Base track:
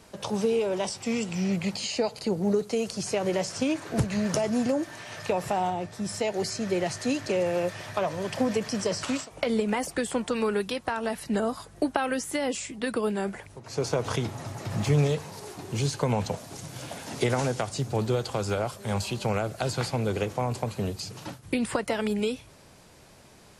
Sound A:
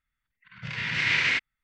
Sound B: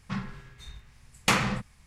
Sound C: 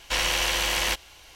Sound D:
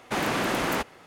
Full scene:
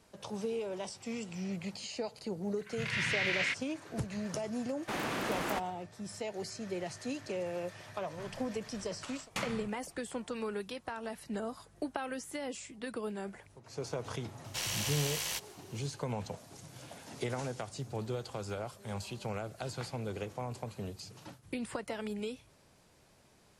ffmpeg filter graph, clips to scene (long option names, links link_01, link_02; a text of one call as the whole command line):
ffmpeg -i bed.wav -i cue0.wav -i cue1.wav -i cue2.wav -i cue3.wav -filter_complex "[0:a]volume=-11dB[link_01];[1:a]alimiter=limit=-20dB:level=0:latency=1:release=268[link_02];[3:a]bass=frequency=250:gain=-8,treble=frequency=4000:gain=11[link_03];[link_02]atrim=end=1.63,asetpts=PTS-STARTPTS,volume=-2.5dB,afade=type=in:duration=0.004:curve=hsin,afade=type=out:start_time=1.626:duration=0.004:curve=hsin,adelay=2150[link_04];[4:a]atrim=end=1.06,asetpts=PTS-STARTPTS,volume=-9dB,afade=type=in:duration=0.004:curve=hsin,afade=type=out:start_time=1.056:duration=0.004:curve=hsin,adelay=210357S[link_05];[2:a]atrim=end=1.86,asetpts=PTS-STARTPTS,volume=-14.5dB,afade=type=in:duration=0.004:curve=hsin,afade=type=out:start_time=1.856:duration=0.004:curve=hsin,adelay=8080[link_06];[link_03]atrim=end=1.35,asetpts=PTS-STARTPTS,volume=-16dB,afade=type=in:duration=0.004:curve=hsin,afade=type=out:start_time=1.346:duration=0.004:curve=hsin,adelay=636804S[link_07];[link_01][link_04][link_05][link_06][link_07]amix=inputs=5:normalize=0" out.wav